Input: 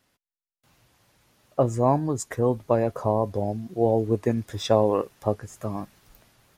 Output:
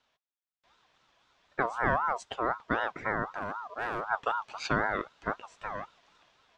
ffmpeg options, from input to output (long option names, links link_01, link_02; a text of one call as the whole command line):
ffmpeg -i in.wav -filter_complex "[0:a]highpass=frequency=120:width=0.5412,highpass=frequency=120:width=1.3066,equalizer=frequency=160:width_type=q:width=4:gain=7,equalizer=frequency=520:width_type=q:width=4:gain=-7,equalizer=frequency=860:width_type=q:width=4:gain=-3,equalizer=frequency=1700:width_type=q:width=4:gain=4,equalizer=frequency=2500:width_type=q:width=4:gain=9,lowpass=frequency=5500:width=0.5412,lowpass=frequency=5500:width=1.3066,asettb=1/sr,asplit=3[link_01][link_02][link_03];[link_01]atrim=end=3.254[link_04];[link_02]atrim=start=3.25:end=4.06,asetpts=PTS-STARTPTS,afade=type=in:duration=0.004:curve=qsin,afade=type=out:start_time=0.806:duration=0.004:curve=qsin,asoftclip=type=hard:threshold=-24.5dB[link_05];[link_03]atrim=start=4.056[link_06];[link_04][link_05]acrossfade=duration=0.004:curve1=hsin:curve2=qsin[link_07];[link_07][link_06]acrossfade=duration=0.004:curve1=qsin:curve2=hsin,aeval=exprs='val(0)*sin(2*PI*1000*n/s+1000*0.2/3.9*sin(2*PI*3.9*n/s))':channel_layout=same,volume=-3dB" out.wav